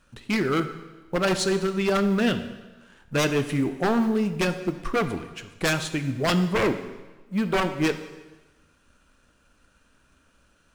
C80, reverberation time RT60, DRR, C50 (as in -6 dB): 12.5 dB, 1.2 s, 9.0 dB, 11.0 dB